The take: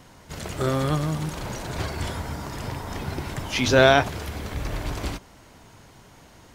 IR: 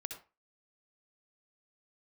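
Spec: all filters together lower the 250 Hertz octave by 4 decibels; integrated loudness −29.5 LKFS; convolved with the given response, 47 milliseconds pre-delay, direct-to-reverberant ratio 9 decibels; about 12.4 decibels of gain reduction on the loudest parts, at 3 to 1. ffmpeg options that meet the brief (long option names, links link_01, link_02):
-filter_complex "[0:a]equalizer=frequency=250:width_type=o:gain=-5.5,acompressor=threshold=-29dB:ratio=3,asplit=2[link_01][link_02];[1:a]atrim=start_sample=2205,adelay=47[link_03];[link_02][link_03]afir=irnorm=-1:irlink=0,volume=-7.5dB[link_04];[link_01][link_04]amix=inputs=2:normalize=0,volume=3dB"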